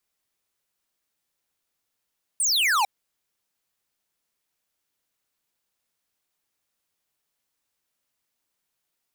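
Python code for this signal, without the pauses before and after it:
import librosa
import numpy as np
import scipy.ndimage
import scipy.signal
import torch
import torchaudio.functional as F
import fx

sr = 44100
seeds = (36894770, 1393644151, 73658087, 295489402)

y = fx.laser_zap(sr, level_db=-21, start_hz=9500.0, end_hz=760.0, length_s=0.45, wave='square')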